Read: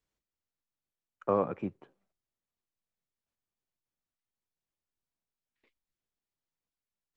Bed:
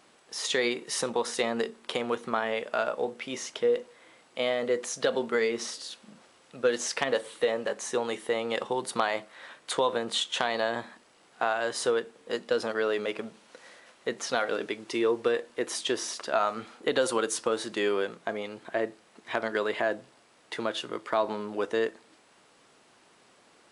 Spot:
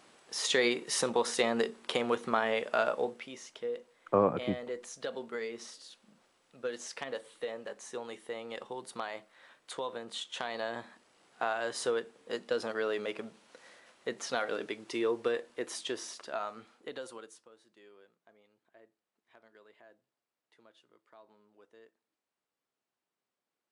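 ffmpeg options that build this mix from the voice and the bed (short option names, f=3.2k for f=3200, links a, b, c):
-filter_complex "[0:a]adelay=2850,volume=2dB[a];[1:a]volume=6dB,afade=t=out:st=2.93:d=0.41:silence=0.281838,afade=t=in:st=10.14:d=1.11:silence=0.473151,afade=t=out:st=15.28:d=2.2:silence=0.0501187[b];[a][b]amix=inputs=2:normalize=0"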